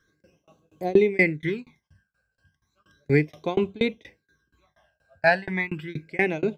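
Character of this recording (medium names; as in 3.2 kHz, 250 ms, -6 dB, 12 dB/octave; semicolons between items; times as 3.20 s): tremolo saw down 4.2 Hz, depth 100%; phasing stages 12, 0.34 Hz, lowest notch 340–1800 Hz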